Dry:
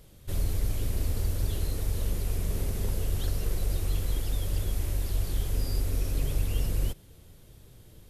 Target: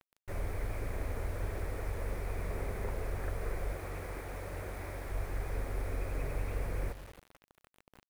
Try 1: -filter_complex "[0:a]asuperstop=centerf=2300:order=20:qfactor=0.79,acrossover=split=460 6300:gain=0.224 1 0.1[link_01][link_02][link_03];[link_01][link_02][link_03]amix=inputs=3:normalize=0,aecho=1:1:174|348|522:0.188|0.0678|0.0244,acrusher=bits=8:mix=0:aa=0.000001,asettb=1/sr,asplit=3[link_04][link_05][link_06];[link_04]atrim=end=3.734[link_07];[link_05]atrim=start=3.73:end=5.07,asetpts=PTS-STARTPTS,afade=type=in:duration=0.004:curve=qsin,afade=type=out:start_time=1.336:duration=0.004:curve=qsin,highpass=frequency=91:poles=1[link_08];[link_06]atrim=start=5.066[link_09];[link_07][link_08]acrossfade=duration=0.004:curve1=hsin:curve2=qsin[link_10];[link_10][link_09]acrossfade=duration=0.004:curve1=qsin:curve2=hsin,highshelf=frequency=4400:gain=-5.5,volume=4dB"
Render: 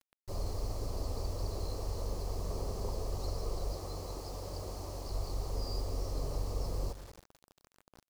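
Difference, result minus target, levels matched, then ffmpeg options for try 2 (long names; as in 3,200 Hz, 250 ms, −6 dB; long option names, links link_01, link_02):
2,000 Hz band −14.5 dB
-filter_complex "[0:a]asuperstop=centerf=4700:order=20:qfactor=0.79,acrossover=split=460 6300:gain=0.224 1 0.1[link_01][link_02][link_03];[link_01][link_02][link_03]amix=inputs=3:normalize=0,aecho=1:1:174|348|522:0.188|0.0678|0.0244,acrusher=bits=8:mix=0:aa=0.000001,asettb=1/sr,asplit=3[link_04][link_05][link_06];[link_04]atrim=end=3.734[link_07];[link_05]atrim=start=3.73:end=5.07,asetpts=PTS-STARTPTS,afade=type=in:duration=0.004:curve=qsin,afade=type=out:start_time=1.336:duration=0.004:curve=qsin,highpass=frequency=91:poles=1[link_08];[link_06]atrim=start=5.066[link_09];[link_07][link_08]acrossfade=duration=0.004:curve1=hsin:curve2=qsin[link_10];[link_10][link_09]acrossfade=duration=0.004:curve1=qsin:curve2=hsin,highshelf=frequency=4400:gain=-5.5,volume=4dB"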